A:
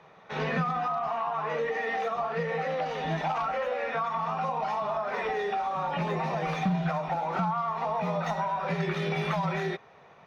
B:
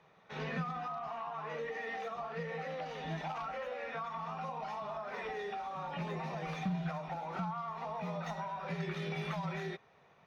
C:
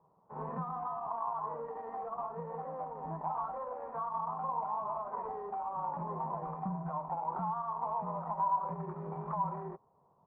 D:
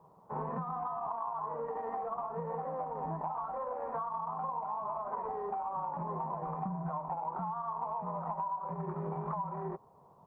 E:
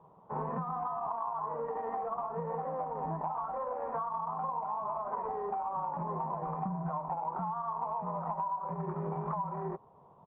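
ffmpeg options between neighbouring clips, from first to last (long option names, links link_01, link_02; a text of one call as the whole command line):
ffmpeg -i in.wav -af "equalizer=frequency=760:width=0.47:gain=-4,volume=-7dB" out.wav
ffmpeg -i in.wav -af "adynamicsmooth=sensitivity=3.5:basefreq=530,lowpass=frequency=1000:width_type=q:width=8.1,volume=-3dB" out.wav
ffmpeg -i in.wav -af "acompressor=threshold=-42dB:ratio=10,volume=8.5dB" out.wav
ffmpeg -i in.wav -af "aresample=8000,aresample=44100,volume=1.5dB" out.wav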